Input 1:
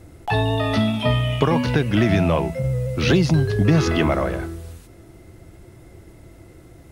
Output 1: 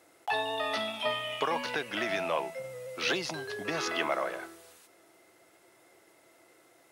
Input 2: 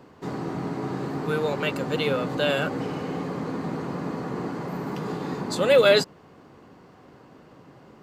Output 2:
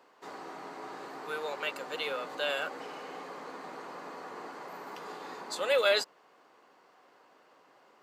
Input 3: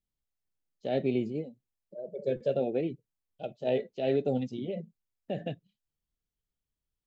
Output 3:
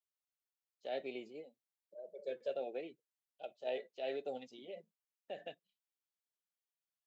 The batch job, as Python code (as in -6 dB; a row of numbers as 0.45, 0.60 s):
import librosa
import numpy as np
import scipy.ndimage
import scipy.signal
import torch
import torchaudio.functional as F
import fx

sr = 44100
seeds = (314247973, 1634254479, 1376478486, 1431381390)

y = scipy.signal.sosfilt(scipy.signal.butter(2, 630.0, 'highpass', fs=sr, output='sos'), x)
y = F.gain(torch.from_numpy(y), -5.5).numpy()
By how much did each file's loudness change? -12.5, -9.0, -12.0 LU